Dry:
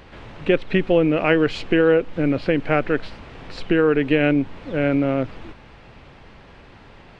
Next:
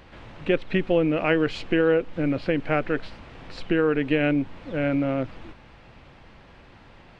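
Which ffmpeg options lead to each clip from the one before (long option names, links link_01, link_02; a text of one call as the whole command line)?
ffmpeg -i in.wav -af "bandreject=frequency=420:width=12,volume=-4dB" out.wav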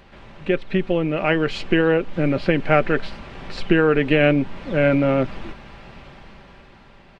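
ffmpeg -i in.wav -af "aecho=1:1:5.1:0.37,dynaudnorm=framelen=290:gausssize=9:maxgain=11.5dB" out.wav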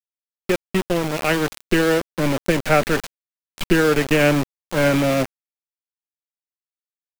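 ffmpeg -i in.wav -filter_complex "[0:a]acrossover=split=200|670|2400[link_01][link_02][link_03][link_04];[link_03]crystalizer=i=1.5:c=0[link_05];[link_01][link_02][link_05][link_04]amix=inputs=4:normalize=0,aeval=exprs='val(0)*gte(abs(val(0)),0.1)':channel_layout=same" out.wav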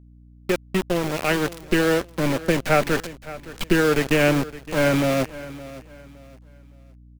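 ffmpeg -i in.wav -af "aeval=exprs='val(0)+0.00562*(sin(2*PI*60*n/s)+sin(2*PI*2*60*n/s)/2+sin(2*PI*3*60*n/s)/3+sin(2*PI*4*60*n/s)/4+sin(2*PI*5*60*n/s)/5)':channel_layout=same,aecho=1:1:565|1130|1695:0.141|0.0438|0.0136,volume=-2dB" out.wav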